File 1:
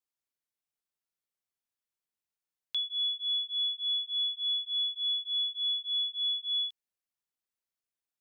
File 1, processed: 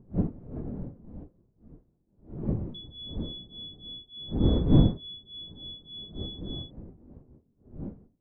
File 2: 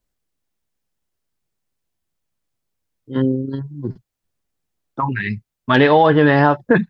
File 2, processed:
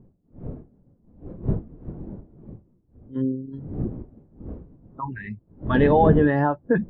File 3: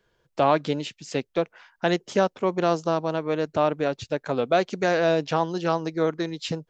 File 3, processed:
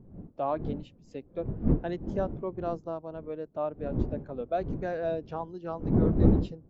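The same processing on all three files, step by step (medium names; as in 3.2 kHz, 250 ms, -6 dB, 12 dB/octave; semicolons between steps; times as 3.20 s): wind noise 280 Hz -23 dBFS; spectral contrast expander 1.5:1; trim -6.5 dB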